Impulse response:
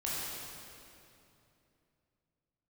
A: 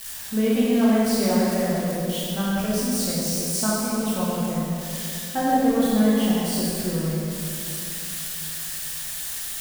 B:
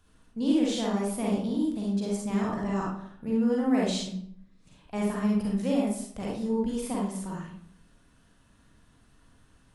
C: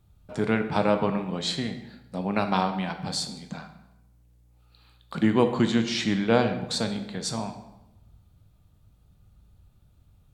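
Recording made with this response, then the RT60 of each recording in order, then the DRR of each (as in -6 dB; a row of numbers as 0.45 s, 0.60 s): A; 2.8 s, 0.65 s, 0.95 s; -7.5 dB, -4.5 dB, 7.0 dB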